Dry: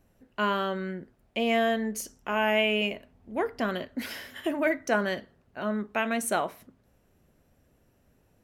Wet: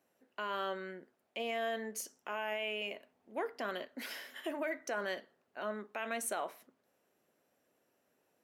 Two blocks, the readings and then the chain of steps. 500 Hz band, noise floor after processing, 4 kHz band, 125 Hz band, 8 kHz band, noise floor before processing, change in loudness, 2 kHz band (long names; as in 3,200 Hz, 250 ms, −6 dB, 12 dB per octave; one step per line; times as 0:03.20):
−10.0 dB, −78 dBFS, −10.0 dB, below −15 dB, −6.0 dB, −67 dBFS, −10.5 dB, −10.0 dB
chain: brickwall limiter −21 dBFS, peak gain reduction 10 dB
high-pass filter 370 Hz 12 dB per octave
level −5.5 dB